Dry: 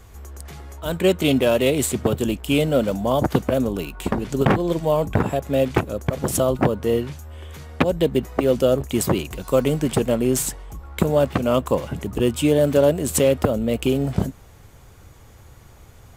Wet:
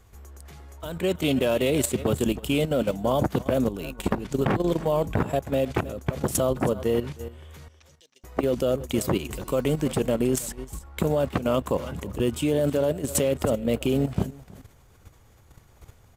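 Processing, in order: 7.68–8.24 s: band-pass filter 5.8 kHz, Q 8.7; delay 319 ms -17 dB; level held to a coarse grid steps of 11 dB

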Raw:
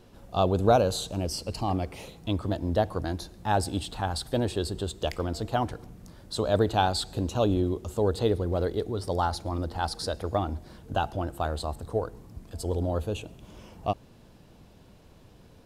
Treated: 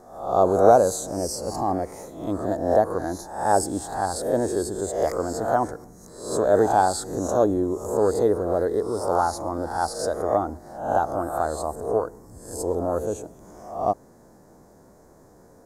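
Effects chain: reverse spectral sustain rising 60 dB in 0.62 s; FFT filter 100 Hz 0 dB, 360 Hz +11 dB, 720 Hz +12 dB, 1 kHz +10 dB, 1.9 kHz +6 dB, 2.8 kHz -18 dB, 6.6 kHz +13 dB, 10 kHz +10 dB; trim -7 dB

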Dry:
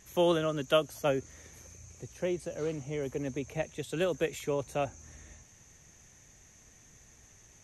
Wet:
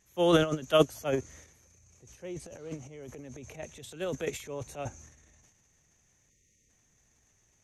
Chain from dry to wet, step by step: transient shaper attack -3 dB, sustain +12 dB; spectral selection erased 6.30–6.69 s, 600–1800 Hz; upward expansion 2.5:1, over -33 dBFS; trim +5 dB

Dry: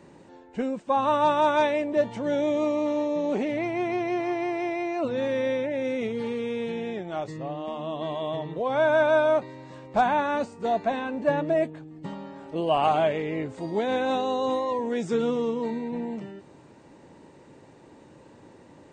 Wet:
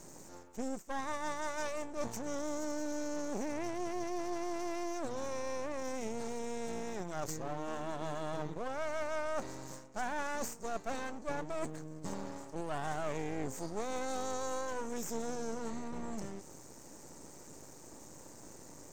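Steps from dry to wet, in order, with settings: resonant high shelf 4.5 kHz +13 dB, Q 3; reverse; compression 6:1, threshold -33 dBFS, peak gain reduction 15 dB; reverse; half-wave rectifier; trim +1 dB

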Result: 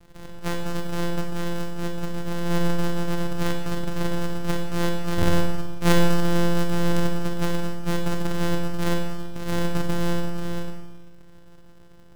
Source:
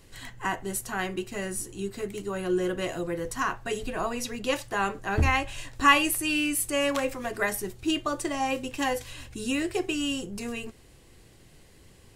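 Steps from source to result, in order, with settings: sorted samples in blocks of 256 samples; half-wave rectifier; Schroeder reverb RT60 1.1 s, combs from 29 ms, DRR 3 dB; trim +3 dB

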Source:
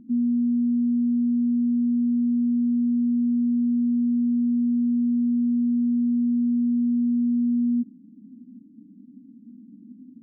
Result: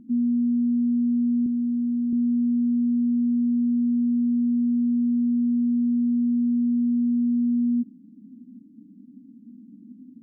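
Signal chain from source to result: 1.46–2.13 s: high-pass 210 Hz 6 dB/octave

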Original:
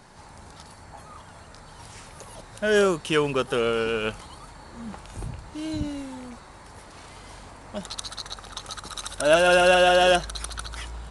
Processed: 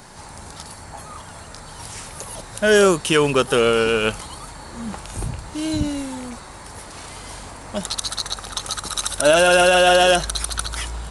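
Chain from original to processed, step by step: treble shelf 6.9 kHz +10 dB; loudness maximiser +11 dB; trim -4 dB

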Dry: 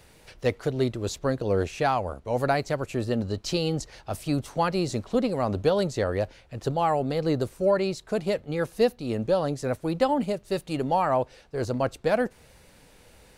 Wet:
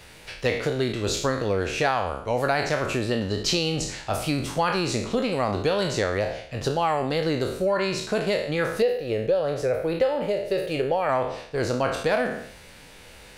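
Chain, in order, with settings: spectral sustain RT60 0.54 s; 8.82–11.09 s: ten-band graphic EQ 250 Hz -10 dB, 500 Hz +10 dB, 1 kHz -9 dB, 4 kHz -4 dB, 8 kHz -9 dB; compression 3:1, threshold -26 dBFS, peak gain reduction 11.5 dB; peaking EQ 2.6 kHz +6.5 dB 2.5 oct; trim +3 dB

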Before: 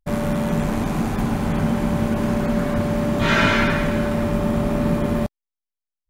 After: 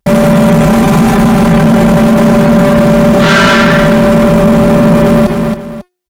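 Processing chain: high-pass 59 Hz 12 dB/octave; comb 5.1 ms, depth 83%; de-hum 360.4 Hz, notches 39; waveshaping leveller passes 3; on a send: feedback delay 273 ms, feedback 29%, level -22 dB; on the sum: loudness maximiser +21.5 dB; trim -1 dB

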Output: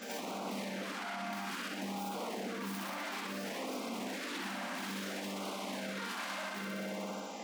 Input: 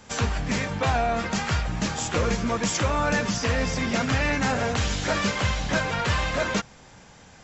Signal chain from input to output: tracing distortion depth 0.26 ms; treble shelf 6.2 kHz -6 dB; on a send: flutter echo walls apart 10.5 m, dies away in 1.4 s; on the sum: wavefolder -19.5 dBFS; compression, threshold -32 dBFS, peak gain reduction 9.5 dB; rippled Chebyshev high-pass 190 Hz, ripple 3 dB; pre-echo 82 ms -14 dB; peak limiter -36 dBFS, peak gain reduction 12.5 dB; LFO notch sine 0.59 Hz 440–1800 Hz; trim +6 dB

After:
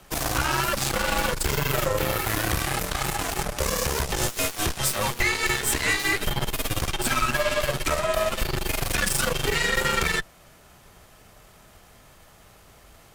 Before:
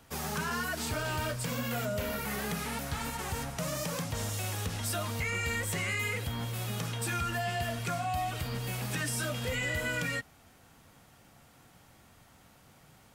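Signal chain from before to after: frequency shift -99 Hz; Chebyshev shaper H 6 -12 dB, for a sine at -19.5 dBFS; trim +7.5 dB

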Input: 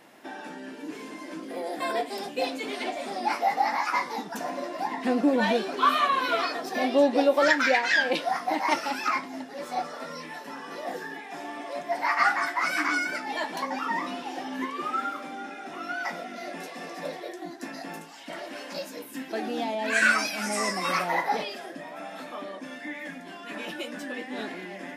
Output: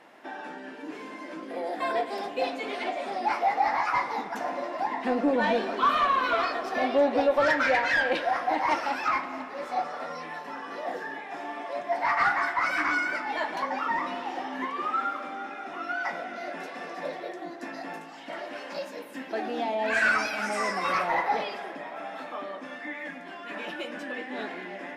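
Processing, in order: overdrive pedal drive 12 dB, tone 1.5 kHz, clips at -10 dBFS; reverberation RT60 3.3 s, pre-delay 55 ms, DRR 11 dB; trim -2.5 dB

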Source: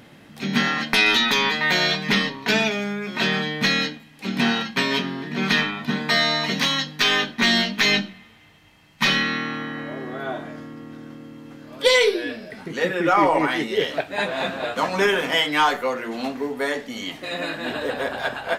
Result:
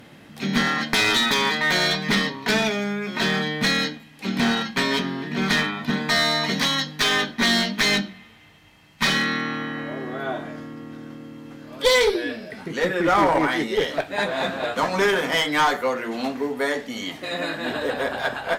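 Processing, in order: one-sided clip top -18.5 dBFS; dynamic bell 2.7 kHz, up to -7 dB, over -41 dBFS, Q 4.9; trim +1 dB

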